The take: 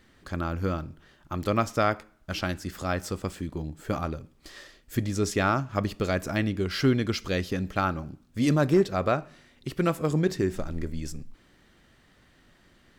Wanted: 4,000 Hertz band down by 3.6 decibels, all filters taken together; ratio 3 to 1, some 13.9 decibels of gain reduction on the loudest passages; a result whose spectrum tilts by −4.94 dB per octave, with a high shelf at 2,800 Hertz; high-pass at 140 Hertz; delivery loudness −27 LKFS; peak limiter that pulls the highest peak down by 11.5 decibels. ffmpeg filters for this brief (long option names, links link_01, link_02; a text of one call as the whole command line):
ffmpeg -i in.wav -af "highpass=140,highshelf=frequency=2800:gain=4,equalizer=frequency=4000:width_type=o:gain=-8.5,acompressor=threshold=-37dB:ratio=3,volume=16dB,alimiter=limit=-14.5dB:level=0:latency=1" out.wav